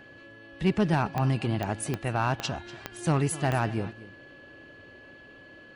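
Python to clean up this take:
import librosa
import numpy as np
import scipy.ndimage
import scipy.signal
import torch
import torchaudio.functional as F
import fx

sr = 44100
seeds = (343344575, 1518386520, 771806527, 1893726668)

y = fx.fix_declip(x, sr, threshold_db=-16.0)
y = fx.fix_declick_ar(y, sr, threshold=10.0)
y = fx.notch(y, sr, hz=1700.0, q=30.0)
y = fx.fix_echo_inverse(y, sr, delay_ms=242, level_db=-17.5)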